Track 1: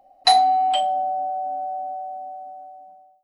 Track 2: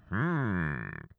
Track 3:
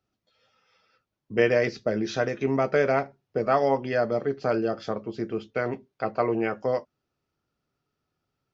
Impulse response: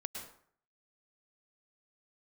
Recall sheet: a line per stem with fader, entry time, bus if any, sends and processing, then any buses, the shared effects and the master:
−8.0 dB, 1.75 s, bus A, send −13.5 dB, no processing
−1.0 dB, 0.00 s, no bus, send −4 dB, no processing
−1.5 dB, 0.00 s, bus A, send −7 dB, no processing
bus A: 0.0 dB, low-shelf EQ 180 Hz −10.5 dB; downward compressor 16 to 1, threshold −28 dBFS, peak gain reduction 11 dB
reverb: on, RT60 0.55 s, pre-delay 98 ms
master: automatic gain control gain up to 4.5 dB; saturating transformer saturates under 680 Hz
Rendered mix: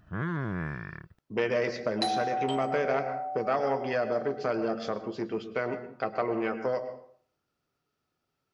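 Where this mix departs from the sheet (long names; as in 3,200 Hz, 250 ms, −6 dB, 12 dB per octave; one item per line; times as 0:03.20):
stem 2: send off
master: missing automatic gain control gain up to 4.5 dB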